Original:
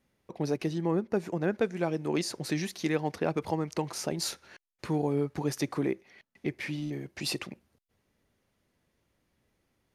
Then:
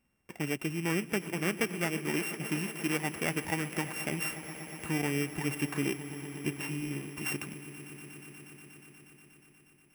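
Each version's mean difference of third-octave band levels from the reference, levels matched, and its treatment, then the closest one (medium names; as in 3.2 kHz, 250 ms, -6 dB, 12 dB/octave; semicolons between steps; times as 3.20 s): 11.0 dB: sorted samples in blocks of 16 samples; graphic EQ 125/500/2000/4000 Hz -3/-7/+5/-10 dB; echo with a slow build-up 120 ms, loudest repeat 5, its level -18 dB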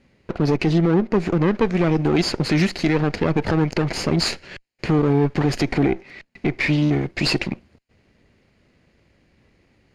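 4.5 dB: comb filter that takes the minimum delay 0.42 ms; low-pass 4.5 kHz 12 dB/octave; loudness maximiser +25.5 dB; trim -9 dB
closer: second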